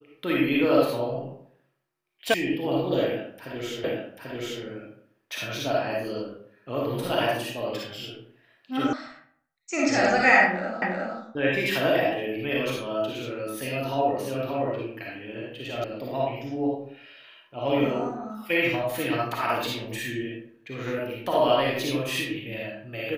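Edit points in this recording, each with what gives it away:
2.34 s: sound stops dead
3.84 s: repeat of the last 0.79 s
8.93 s: sound stops dead
10.82 s: repeat of the last 0.36 s
15.84 s: sound stops dead

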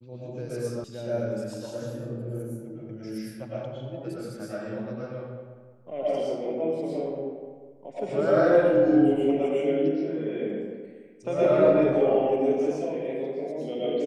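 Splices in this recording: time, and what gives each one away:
0.84 s: sound stops dead

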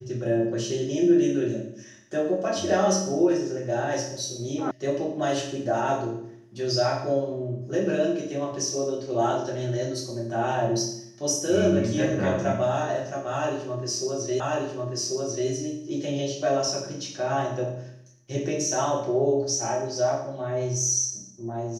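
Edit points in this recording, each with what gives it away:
4.71 s: sound stops dead
14.40 s: repeat of the last 1.09 s

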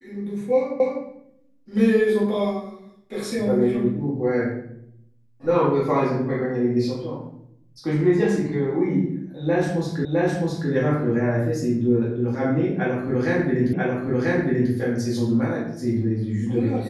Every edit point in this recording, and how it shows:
0.80 s: repeat of the last 0.25 s
10.05 s: repeat of the last 0.66 s
13.73 s: repeat of the last 0.99 s

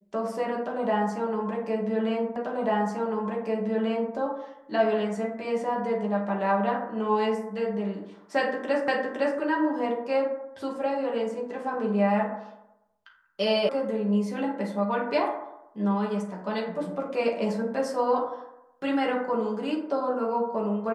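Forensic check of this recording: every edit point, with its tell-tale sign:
2.36 s: repeat of the last 1.79 s
8.88 s: repeat of the last 0.51 s
13.69 s: sound stops dead

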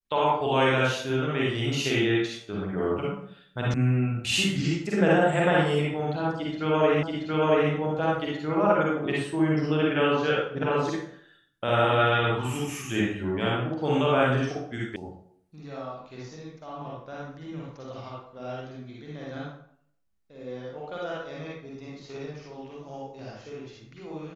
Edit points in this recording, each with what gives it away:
3.74 s: sound stops dead
7.03 s: repeat of the last 0.68 s
14.96 s: sound stops dead

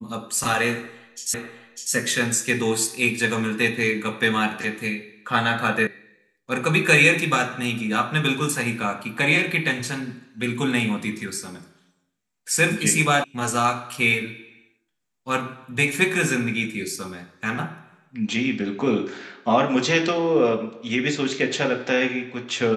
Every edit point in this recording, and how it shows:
1.34 s: repeat of the last 0.6 s
5.87 s: sound stops dead
13.24 s: sound stops dead

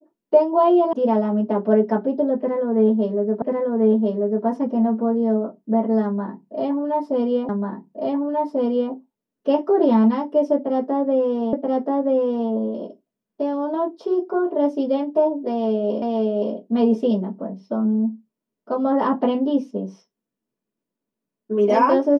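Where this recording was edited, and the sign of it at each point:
0.93 s: sound stops dead
3.42 s: repeat of the last 1.04 s
7.49 s: repeat of the last 1.44 s
11.53 s: repeat of the last 0.98 s
16.02 s: repeat of the last 0.52 s

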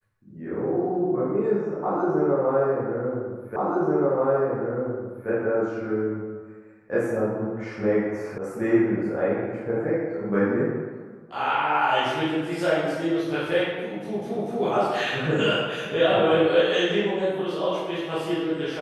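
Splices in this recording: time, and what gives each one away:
3.56 s: repeat of the last 1.73 s
8.38 s: sound stops dead

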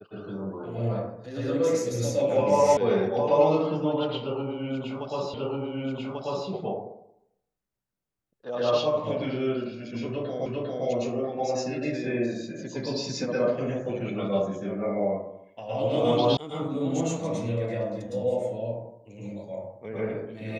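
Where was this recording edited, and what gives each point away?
2.77 s: sound stops dead
5.34 s: repeat of the last 1.14 s
10.46 s: repeat of the last 0.4 s
16.37 s: sound stops dead

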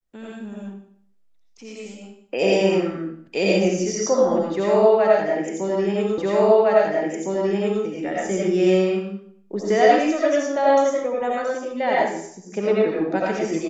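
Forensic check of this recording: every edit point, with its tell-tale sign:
6.18 s: repeat of the last 1.66 s

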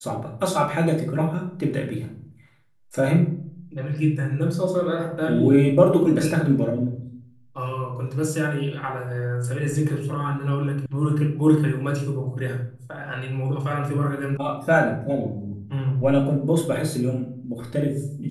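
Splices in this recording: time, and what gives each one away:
10.86 s: sound stops dead
14.37 s: sound stops dead

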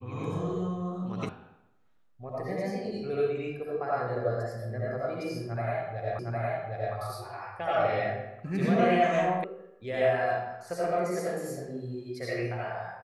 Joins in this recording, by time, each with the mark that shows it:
1.29 s: sound stops dead
6.19 s: repeat of the last 0.76 s
9.44 s: sound stops dead

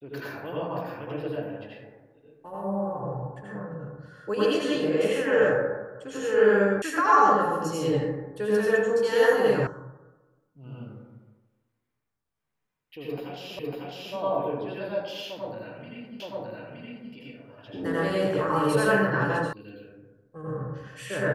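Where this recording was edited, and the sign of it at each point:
6.82 s: sound stops dead
9.67 s: sound stops dead
13.59 s: repeat of the last 0.55 s
16.20 s: repeat of the last 0.92 s
19.53 s: sound stops dead

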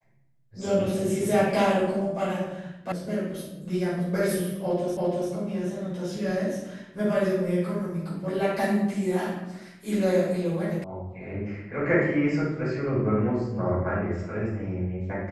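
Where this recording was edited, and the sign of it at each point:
2.92 s: sound stops dead
4.97 s: repeat of the last 0.34 s
10.84 s: sound stops dead

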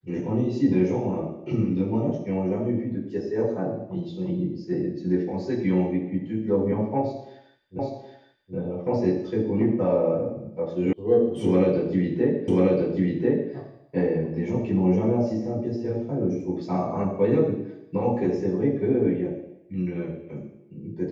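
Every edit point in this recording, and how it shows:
7.79 s: repeat of the last 0.77 s
10.93 s: sound stops dead
12.48 s: repeat of the last 1.04 s

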